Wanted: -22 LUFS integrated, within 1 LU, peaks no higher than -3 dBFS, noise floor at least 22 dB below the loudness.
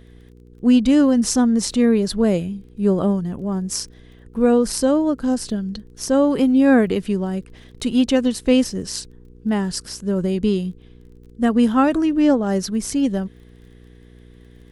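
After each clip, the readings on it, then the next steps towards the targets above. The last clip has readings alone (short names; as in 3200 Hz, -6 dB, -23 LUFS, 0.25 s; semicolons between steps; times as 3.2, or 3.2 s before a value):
ticks 24/s; hum 60 Hz; harmonics up to 480 Hz; hum level -41 dBFS; loudness -19.0 LUFS; peak -4.0 dBFS; loudness target -22.0 LUFS
-> de-click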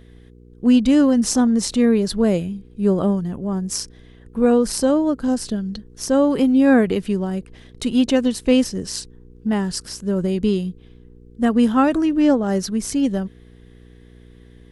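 ticks 0/s; hum 60 Hz; harmonics up to 480 Hz; hum level -42 dBFS
-> de-hum 60 Hz, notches 8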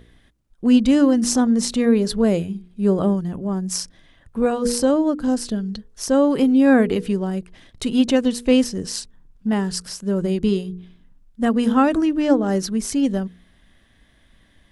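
hum none; loudness -20.0 LUFS; peak -4.5 dBFS; loudness target -22.0 LUFS
-> gain -2 dB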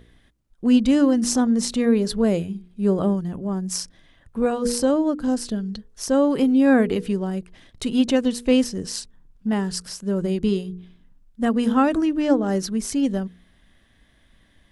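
loudness -22.0 LUFS; peak -6.5 dBFS; noise floor -58 dBFS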